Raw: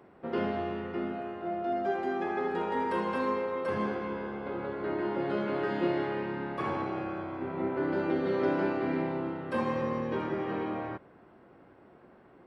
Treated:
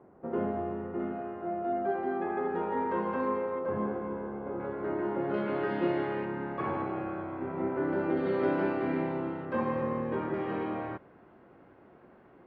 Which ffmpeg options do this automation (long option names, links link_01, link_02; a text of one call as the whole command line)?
ffmpeg -i in.wav -af "asetnsamples=nb_out_samples=441:pad=0,asendcmd='1 lowpass f 1600;3.59 lowpass f 1100;4.6 lowpass f 1700;5.34 lowpass f 3000;6.25 lowpass f 2100;8.17 lowpass f 3200;9.45 lowpass f 2000;10.34 lowpass f 3400',lowpass=1100" out.wav